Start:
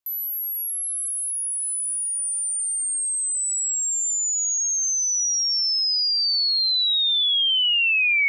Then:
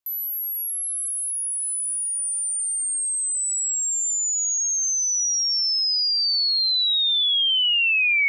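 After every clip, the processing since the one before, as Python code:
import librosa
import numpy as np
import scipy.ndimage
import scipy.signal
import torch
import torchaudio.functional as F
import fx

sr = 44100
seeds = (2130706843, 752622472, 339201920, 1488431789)

y = x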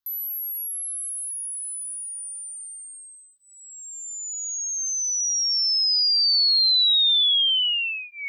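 y = fx.fixed_phaser(x, sr, hz=2400.0, stages=6)
y = y * 10.0 ** (2.5 / 20.0)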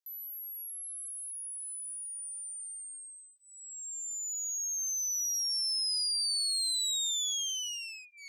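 y = fx.clip_asym(x, sr, top_db=-35.5, bottom_db=-16.5)
y = fx.bandpass_q(y, sr, hz=7200.0, q=1.4)
y = y * 10.0 ** (-2.5 / 20.0)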